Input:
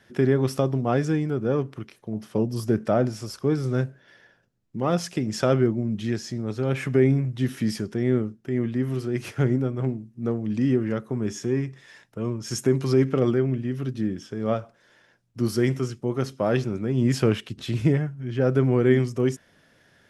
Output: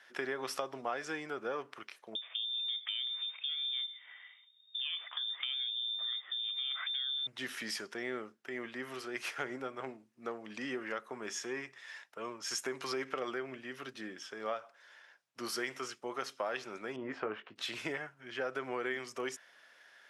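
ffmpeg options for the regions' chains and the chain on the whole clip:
-filter_complex "[0:a]asettb=1/sr,asplit=3[a][b][c];[a]atrim=end=2.154[d];[b]atrim=start=2.15:end=7.27,asetpts=PTS-STARTPTS,afade=t=in:d=0.004:c=qsin,afade=t=out:st=5.116:d=0.004:c=qsin,lowshelf=f=120:t=q:w=1.5:g=13,acompressor=threshold=-37dB:ratio=3:attack=3.2:release=140:knee=1:detection=peak,lowpass=f=3.1k:t=q:w=0.5098,lowpass=f=3.1k:t=q:w=0.6013,lowpass=f=3.1k:t=q:w=0.9,lowpass=f=3.1k:t=q:w=2.563,afreqshift=-3700[e];[c]atrim=start=7.266[f];[d][e]acrossfade=d=0.004:c1=hsin:c2=qsin[g];[g][f]acrossfade=d=0.004:c1=qsin:c2=hsin,asettb=1/sr,asplit=3[h][i][j];[h]atrim=end=16.964[k];[i]atrim=start=16.96:end=17.56,asetpts=PTS-STARTPTS,afade=t=in:d=0.004:c=qsin,afade=t=out:st=0.596:d=0.004:c=qsin,lowpass=1.2k,asplit=2[l][m];[m]adelay=19,volume=-8dB[n];[l][n]amix=inputs=2:normalize=0,atrim=end_sample=26460[o];[j]atrim=start=17.556[p];[k][o]acrossfade=d=0.004:c1=hsin:c2=qsin[q];[q][p]acrossfade=d=0.004:c1=qsin:c2=hsin,highpass=940,highshelf=f=5.3k:g=-8,acompressor=threshold=-36dB:ratio=4,volume=2.5dB"

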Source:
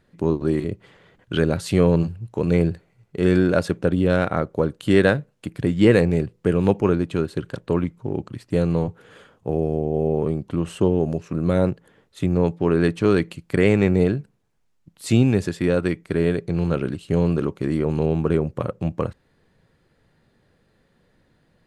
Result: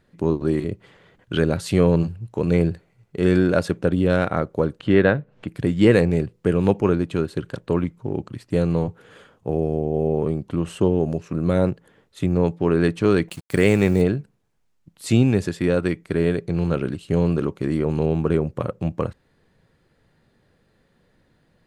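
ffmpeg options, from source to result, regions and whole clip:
-filter_complex "[0:a]asettb=1/sr,asplit=3[a][b][c];[a]atrim=end=4.804[d];[b]atrim=start=4.8:end=5.48,asetpts=PTS-STARTPTS,afade=t=in:d=0.004:c=qsin,afade=t=out:st=0.676:d=0.004:c=qsin,lowpass=2.8k,acompressor=mode=upward:threshold=-34dB:ratio=2.5:attack=3.2:release=140:knee=2.83:detection=peak[e];[c]atrim=start=5.476[f];[d][e]acrossfade=d=0.004:c1=hsin:c2=qsin[g];[g][f]acrossfade=d=0.004:c1=qsin:c2=hsin,asettb=1/sr,asplit=3[h][i][j];[h]atrim=end=13.284[k];[i]atrim=start=13.28:end=14.02,asetpts=PTS-STARTPTS,afade=t=in:d=0.004:c=qsin,afade=t=out:st=0.736:d=0.004:c=qsin,highshelf=f=5.6k:g=10.5,acrusher=bits=6:mix=0:aa=0.5[l];[j]atrim=start=14.016[m];[k][l]acrossfade=d=0.004:c1=hsin:c2=qsin[n];[n][m]acrossfade=d=0.004:c1=qsin:c2=hsin"

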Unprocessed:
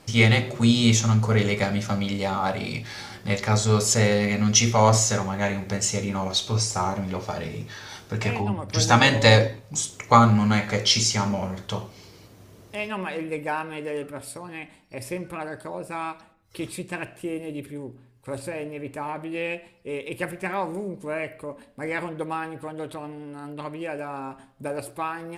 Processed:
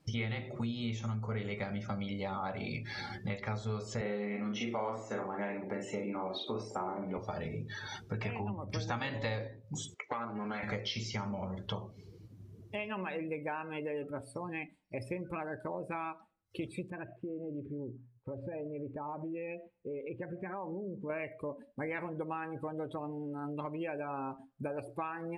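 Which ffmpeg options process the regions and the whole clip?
-filter_complex "[0:a]asettb=1/sr,asplit=3[a][b][c];[a]atrim=end=4.014[d];[b]atrim=start=4.01:end=7.18,asetpts=PTS-STARTPTS,afade=t=in:d=0.004:c=qsin,afade=t=out:st=3.166:d=0.004:c=qsin,highpass=f=280:t=q:w=1.8,equalizer=f=5.9k:w=1:g=-10.5,asplit=2[e][f];[f]adelay=44,volume=-3.5dB[g];[e][g]amix=inputs=2:normalize=0,atrim=end_sample=139797[h];[c]atrim=start=7.176[i];[d][h]acrossfade=d=0.004:c1=hsin:c2=qsin[j];[j][i]acrossfade=d=0.004:c1=qsin:c2=hsin,asettb=1/sr,asplit=3[k][l][m];[k]atrim=end=9.944[n];[l]atrim=start=9.94:end=10.63,asetpts=PTS-STARTPTS,afade=t=in:d=0.004:c=qsin,afade=t=out:st=0.686:d=0.004:c=qsin,acompressor=threshold=-17dB:ratio=10:attack=3.2:release=140:knee=1:detection=peak,aeval=exprs='(tanh(7.08*val(0)+0.65)-tanh(0.65))/7.08':c=same,highpass=300,lowpass=4.7k[o];[m]atrim=start=10.626[p];[n][o]acrossfade=d=0.004:c1=hsin:c2=qsin[q];[q][p]acrossfade=d=0.004:c1=qsin:c2=hsin,asettb=1/sr,asplit=3[r][s][t];[r]atrim=end=16.904[u];[s]atrim=start=16.9:end=21.1,asetpts=PTS-STARTPTS,afade=t=in:d=0.004:c=qsin,afade=t=out:st=4.196:d=0.004:c=qsin,lowpass=2k,acompressor=threshold=-36dB:ratio=5:attack=3.2:release=140:knee=1:detection=peak[v];[t]atrim=start=21.096[w];[u][v]acrossfade=d=0.004:c1=hsin:c2=qsin[x];[x][w]acrossfade=d=0.004:c1=qsin:c2=hsin,acrossover=split=3800[y][z];[z]acompressor=threshold=-42dB:ratio=4:attack=1:release=60[aa];[y][aa]amix=inputs=2:normalize=0,afftdn=nr=21:nf=-40,acompressor=threshold=-35dB:ratio=6"

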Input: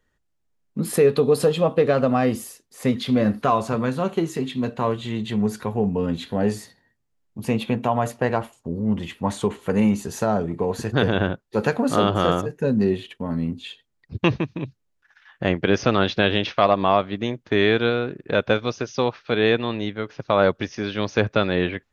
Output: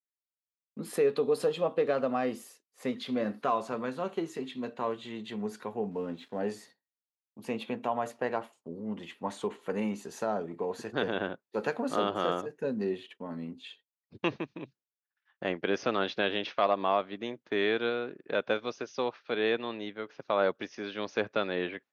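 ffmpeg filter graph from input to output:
-filter_complex "[0:a]asettb=1/sr,asplit=3[a][b][c];[a]atrim=end=5.914[d];[b]atrim=start=5.91:end=6.4,asetpts=PTS-STARTPTS,afade=t=in:d=0.004:c=qsin,afade=t=out:st=0.486:d=0.004:c=qsin,lowpass=f=2.6k:p=1,aeval=exprs='sgn(val(0))*max(abs(val(0))-0.00266,0)':c=same[e];[c]atrim=start=6.396[f];[d][e]acrossfade=d=0.004:c1=hsin:c2=qsin[g];[g][f]acrossfade=d=0.004:c1=qsin:c2=hsin,agate=range=-33dB:threshold=-41dB:ratio=3:detection=peak,highpass=270,highshelf=f=7.8k:g=-8.5,volume=-8.5dB"

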